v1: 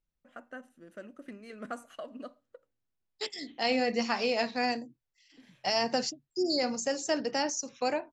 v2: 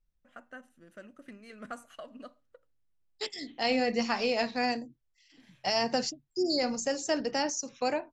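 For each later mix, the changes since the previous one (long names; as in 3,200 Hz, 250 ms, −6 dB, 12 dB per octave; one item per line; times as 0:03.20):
first voice: add parametric band 360 Hz −5.5 dB 2.2 octaves
master: add low-shelf EQ 73 Hz +11.5 dB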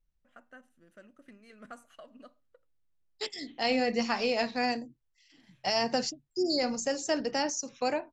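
first voice −5.5 dB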